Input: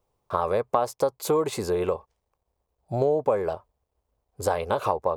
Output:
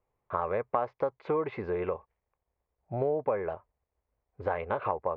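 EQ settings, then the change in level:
low-pass with resonance 2,100 Hz, resonance Q 2.6
high-frequency loss of the air 250 metres
−6.0 dB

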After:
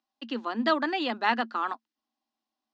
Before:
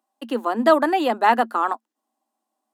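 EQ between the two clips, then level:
Butterworth low-pass 5,400 Hz 36 dB per octave
parametric band 590 Hz −15 dB 2.8 octaves
+2.5 dB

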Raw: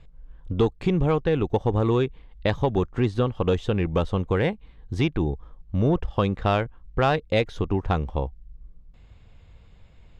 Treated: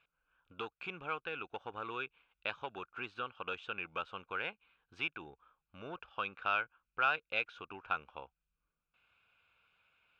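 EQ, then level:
pair of resonant band-passes 1,900 Hz, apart 0.78 octaves
+1.0 dB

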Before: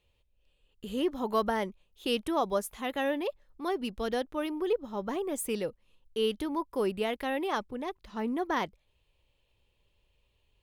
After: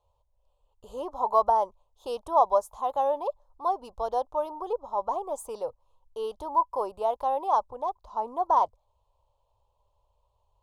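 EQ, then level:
drawn EQ curve 110 Hz 0 dB, 180 Hz −20 dB, 360 Hz −10 dB, 600 Hz +7 dB, 1,000 Hz +13 dB, 1,900 Hz −25 dB, 3,700 Hz −9 dB, 6,700 Hz −3 dB, 15,000 Hz −13 dB
0.0 dB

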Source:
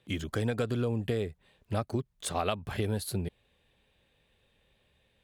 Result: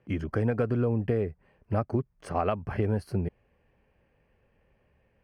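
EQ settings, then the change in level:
moving average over 12 samples
+4.0 dB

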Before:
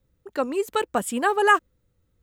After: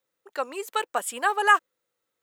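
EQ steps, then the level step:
high-pass filter 660 Hz 12 dB per octave
0.0 dB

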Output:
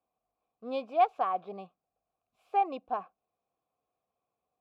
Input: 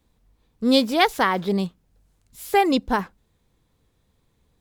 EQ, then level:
formant filter a
high-shelf EQ 3,000 Hz −11.5 dB
0.0 dB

